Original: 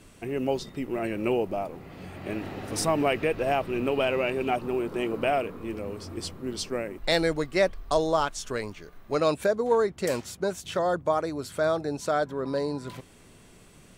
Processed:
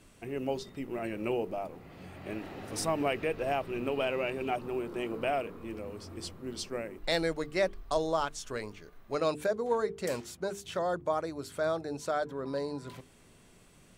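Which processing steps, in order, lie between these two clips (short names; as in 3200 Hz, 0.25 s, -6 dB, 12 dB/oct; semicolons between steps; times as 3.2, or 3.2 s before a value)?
notches 50/100/150/200/250/300/350/400/450 Hz; gain -5.5 dB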